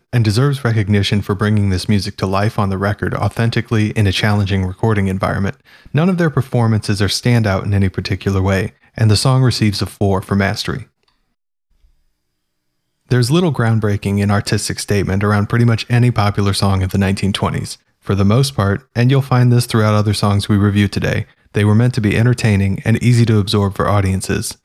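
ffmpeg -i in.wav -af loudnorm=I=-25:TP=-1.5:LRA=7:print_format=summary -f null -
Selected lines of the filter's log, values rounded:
Input Integrated:    -15.5 LUFS
Input True Peak:      -1.6 dBTP
Input LRA:             3.1 LU
Input Threshold:     -25.7 LUFS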